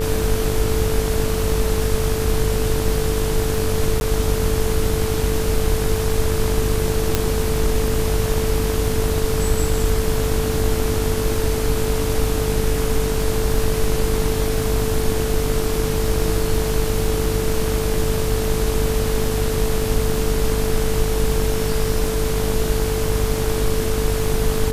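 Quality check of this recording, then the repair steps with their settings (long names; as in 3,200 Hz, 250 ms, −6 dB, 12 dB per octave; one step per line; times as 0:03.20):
mains buzz 50 Hz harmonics 35 −24 dBFS
surface crackle 22 per second −27 dBFS
whistle 440 Hz −23 dBFS
0:04.00–0:04.01: drop-out 11 ms
0:07.15: click −2 dBFS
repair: click removal
hum removal 50 Hz, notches 35
notch filter 440 Hz, Q 30
repair the gap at 0:04.00, 11 ms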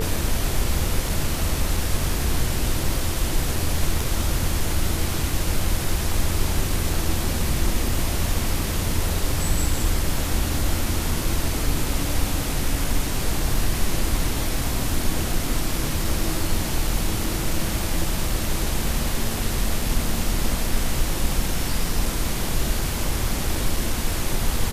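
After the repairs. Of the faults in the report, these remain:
none of them is left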